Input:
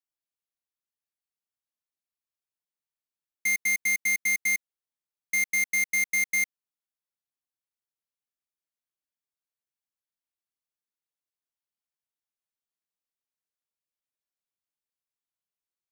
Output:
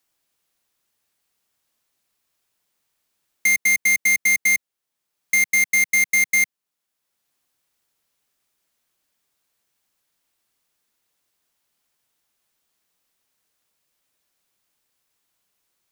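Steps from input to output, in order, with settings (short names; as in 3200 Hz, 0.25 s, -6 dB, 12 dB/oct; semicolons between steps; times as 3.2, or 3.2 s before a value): three-band squash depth 40%; gain +7.5 dB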